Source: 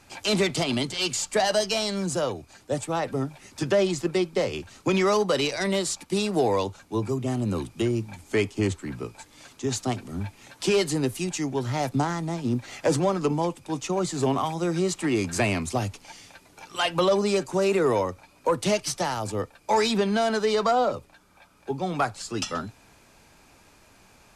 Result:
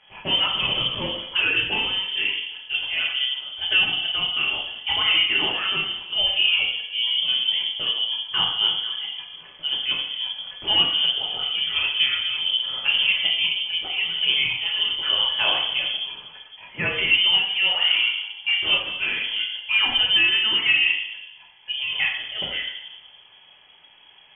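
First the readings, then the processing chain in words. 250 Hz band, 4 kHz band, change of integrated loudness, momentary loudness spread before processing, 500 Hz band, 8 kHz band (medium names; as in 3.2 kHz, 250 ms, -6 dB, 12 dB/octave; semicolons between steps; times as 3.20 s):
-15.5 dB, +16.0 dB, +5.5 dB, 10 LU, -15.5 dB, under -40 dB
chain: simulated room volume 320 m³, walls mixed, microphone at 1.6 m; frequency inversion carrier 3.3 kHz; trim -3 dB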